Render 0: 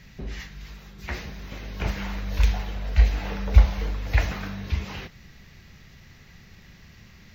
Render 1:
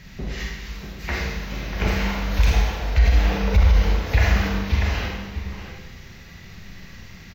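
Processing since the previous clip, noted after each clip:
slap from a distant wall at 110 metres, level −8 dB
four-comb reverb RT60 1.1 s, combs from 33 ms, DRR −0.5 dB
boost into a limiter +11.5 dB
level −7 dB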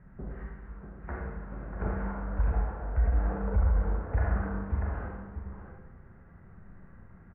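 Chebyshev low-pass filter 1,500 Hz, order 4
level −8.5 dB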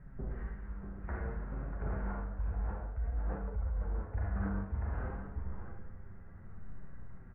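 low-shelf EQ 64 Hz +10.5 dB
reversed playback
downward compressor 6 to 1, threshold −28 dBFS, peak gain reduction 12.5 dB
reversed playback
flanger 0.57 Hz, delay 6.9 ms, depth 3.5 ms, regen +52%
level +2 dB

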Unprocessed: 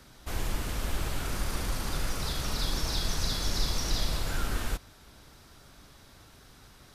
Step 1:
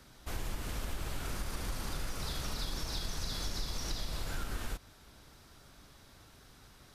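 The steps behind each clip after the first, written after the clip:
downward compressor 4 to 1, threshold −29 dBFS, peak gain reduction 7 dB
level −3.5 dB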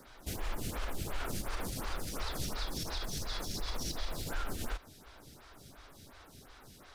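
in parallel at −4.5 dB: floating-point word with a short mantissa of 2 bits
on the sum: brickwall limiter −26 dBFS, peak gain reduction 6 dB
phaser with staggered stages 2.8 Hz
level +2.5 dB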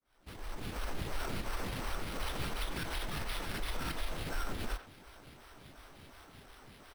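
fade in at the beginning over 0.92 s
sample-rate reduction 7,000 Hz, jitter 0%
far-end echo of a speakerphone 90 ms, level −10 dB

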